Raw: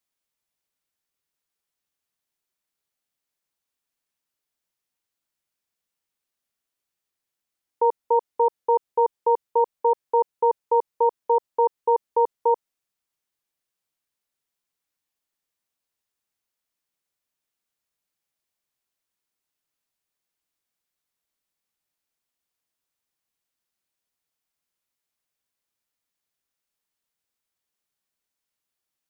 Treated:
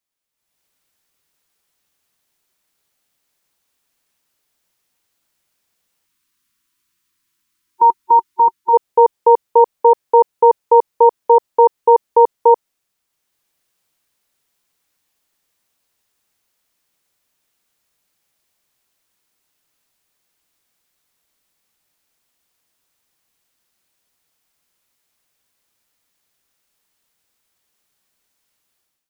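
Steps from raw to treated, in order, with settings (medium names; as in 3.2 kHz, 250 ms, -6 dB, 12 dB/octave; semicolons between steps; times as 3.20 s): time-frequency box 6.05–8.74 s, 380–920 Hz -18 dB; level rider gain up to 14 dB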